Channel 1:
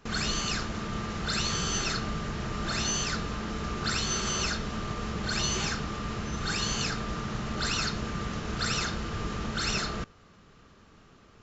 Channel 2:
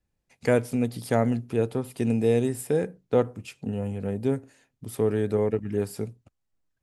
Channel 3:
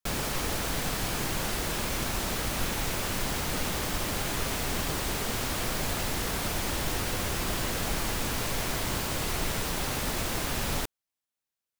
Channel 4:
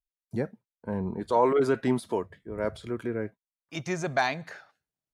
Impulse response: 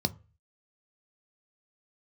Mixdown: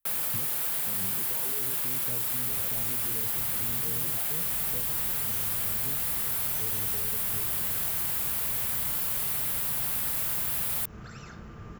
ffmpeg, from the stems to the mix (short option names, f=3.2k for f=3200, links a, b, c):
-filter_complex "[0:a]adelay=2450,volume=-11.5dB[a];[1:a]adelay=1600,volume=-16.5dB[b];[2:a]aexciter=amount=1.7:drive=2.1:freq=3.3k,highpass=f=1.2k:p=1,volume=2.5dB[c];[3:a]volume=-2dB[d];[a][d]amix=inputs=2:normalize=0,alimiter=level_in=7.5dB:limit=-24dB:level=0:latency=1:release=163,volume=-7.5dB,volume=0dB[e];[b][c][e]amix=inputs=3:normalize=0,acrossover=split=150|3000[f][g][h];[g]acompressor=threshold=-40dB:ratio=6[i];[f][i][h]amix=inputs=3:normalize=0,equalizer=f=125:t=o:w=1:g=5,equalizer=f=4k:t=o:w=1:g=-11,equalizer=f=8k:t=o:w=1:g=-5"